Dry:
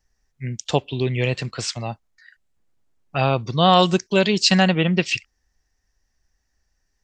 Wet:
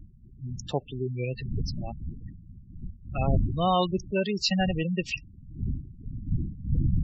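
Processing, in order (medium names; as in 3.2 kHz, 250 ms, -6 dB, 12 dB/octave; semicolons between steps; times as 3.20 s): wind noise 130 Hz -23 dBFS; vibrato 6.2 Hz 13 cents; spectral gate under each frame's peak -15 dB strong; trim -8.5 dB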